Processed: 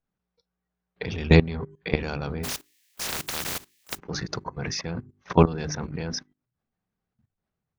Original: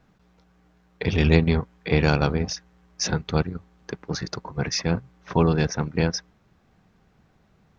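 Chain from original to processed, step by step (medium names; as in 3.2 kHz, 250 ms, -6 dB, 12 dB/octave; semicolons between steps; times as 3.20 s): 2.43–3.97 s: spectral contrast reduction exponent 0.13; spectral noise reduction 23 dB; hum notches 50/100/150/200/250/300/350/400 Hz; level held to a coarse grid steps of 18 dB; trim +5.5 dB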